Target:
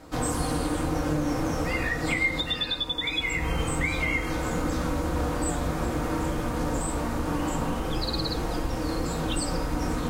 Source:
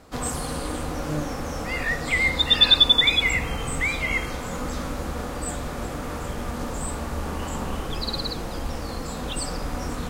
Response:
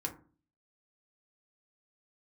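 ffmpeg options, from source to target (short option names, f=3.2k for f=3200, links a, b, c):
-filter_complex "[0:a]acompressor=threshold=-26dB:ratio=8[a];[1:a]atrim=start_sample=2205[b];[a][b]afir=irnorm=-1:irlink=0,volume=1.5dB"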